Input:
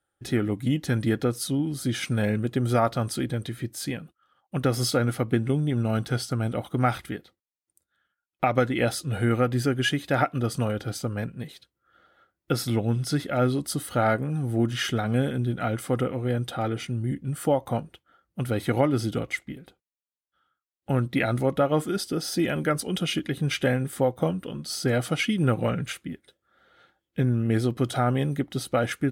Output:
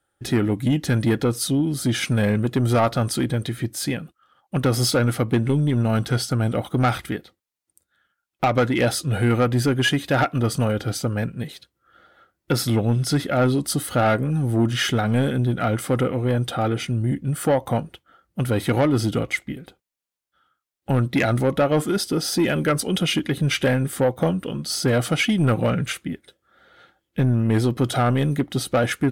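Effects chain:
tape wow and flutter 22 cents
soft clipping −18.5 dBFS, distortion −15 dB
level +6.5 dB

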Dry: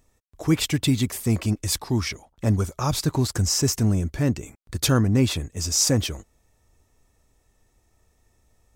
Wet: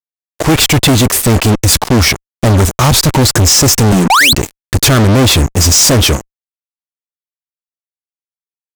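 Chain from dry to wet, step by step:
0:03.92–0:04.33: Butterworth high-pass 170 Hz 72 dB per octave
0:04.10–0:04.33: sound drawn into the spectrogram rise 710–4,500 Hz −14 dBFS
fuzz pedal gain 35 dB, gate −37 dBFS
level +7 dB

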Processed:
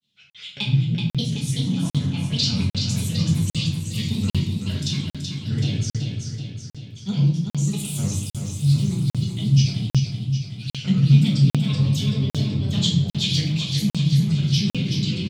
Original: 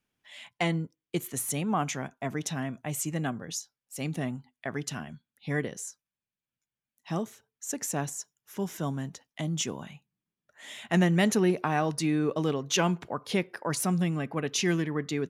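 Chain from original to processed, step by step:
in parallel at +2 dB: brickwall limiter −23 dBFS, peak gain reduction 9.5 dB
on the sum: high-pass filter 87 Hz 24 dB per octave
parametric band 180 Hz +5.5 dB 0.25 octaves
granular cloud, pitch spread up and down by 7 semitones
convolution reverb RT60 0.75 s, pre-delay 5 ms, DRR −3.5 dB
speech leveller within 4 dB 0.5 s
drawn EQ curve 110 Hz 0 dB, 550 Hz −26 dB, 1,800 Hz −23 dB, 3,500 Hz +1 dB, 13,000 Hz −20 dB
repeating echo 379 ms, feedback 55%, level −5.5 dB
regular buffer underruns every 0.80 s, samples 2,048, zero, from 0:00.30
level +3 dB

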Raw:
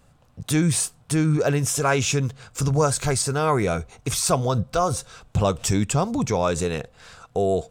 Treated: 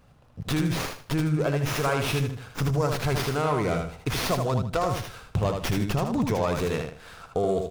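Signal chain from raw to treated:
downward compressor, threshold −22 dBFS, peak gain reduction 7.5 dB
repeating echo 78 ms, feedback 28%, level −5 dB
windowed peak hold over 5 samples

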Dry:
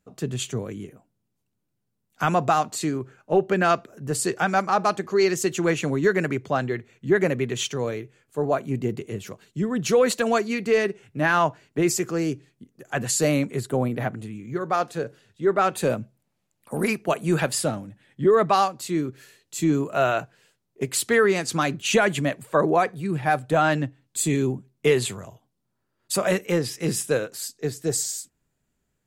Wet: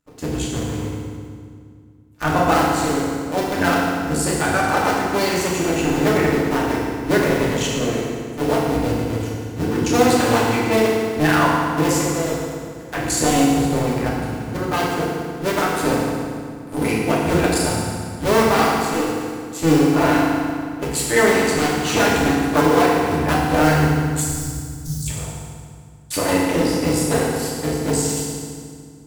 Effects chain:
sub-harmonics by changed cycles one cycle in 2, muted
0:24.21–0:25.07: elliptic band-stop filter 140–5,600 Hz
feedback delay network reverb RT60 2.1 s, low-frequency decay 1.4×, high-frequency decay 0.8×, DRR −6 dB

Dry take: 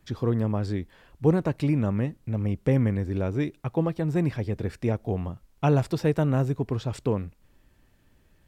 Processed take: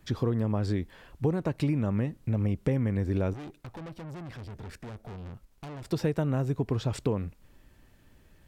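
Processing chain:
downward compressor 5 to 1, threshold −27 dBFS, peak gain reduction 11.5 dB
0:03.33–0:05.91: tube saturation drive 42 dB, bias 0.65
level +3 dB

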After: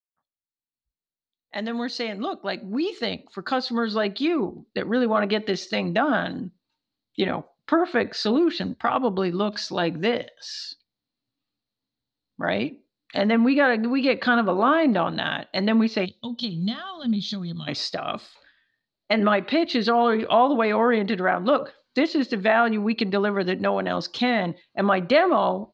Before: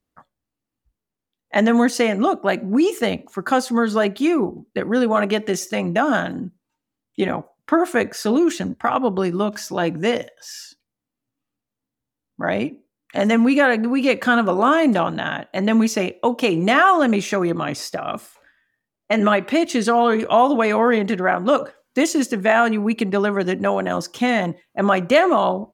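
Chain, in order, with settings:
fade in at the beginning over 5.23 s
treble cut that deepens with the level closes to 2,100 Hz, closed at −14 dBFS
gain on a spectral selection 0:16.05–0:17.68, 240–3,000 Hz −20 dB
low-pass with resonance 4,200 Hz, resonance Q 7.2
level −3.5 dB

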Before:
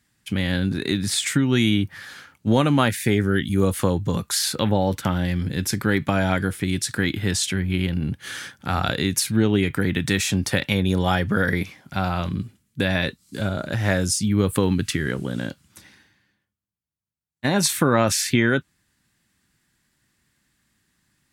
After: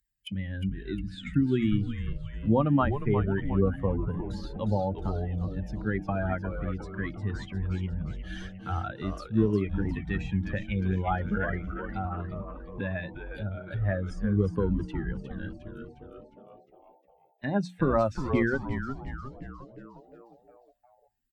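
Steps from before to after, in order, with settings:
spectral dynamics exaggerated over time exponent 2
mains-hum notches 60/120/180/240/300 Hz
noise gate with hold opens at −48 dBFS
upward compression, threshold −32 dBFS
treble cut that deepens with the level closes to 1,500 Hz, closed at −31 dBFS
echo with shifted repeats 357 ms, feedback 56%, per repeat −140 Hz, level −7.5 dB
level −1.5 dB

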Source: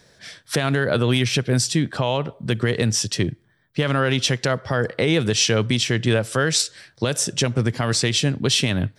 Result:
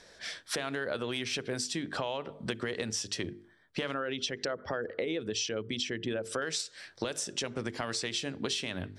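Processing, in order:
0:03.94–0:06.42: spectral envelope exaggerated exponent 1.5
parametric band 130 Hz −13.5 dB 1.1 octaves
mains-hum notches 50/100/150/200/250/300/350/400/450 Hz
downward compressor 6 to 1, threshold −31 dBFS, peak gain reduction 14.5 dB
Bessel low-pass filter 8,600 Hz, order 2

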